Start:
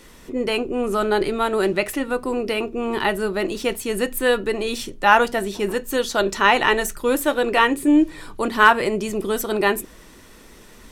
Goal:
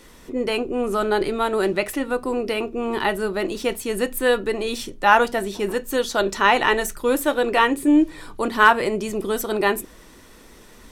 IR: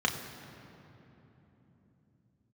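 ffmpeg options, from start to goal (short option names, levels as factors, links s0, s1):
-filter_complex "[0:a]asplit=2[s0][s1];[1:a]atrim=start_sample=2205,atrim=end_sample=3087[s2];[s1][s2]afir=irnorm=-1:irlink=0,volume=0.0447[s3];[s0][s3]amix=inputs=2:normalize=0,volume=0.891"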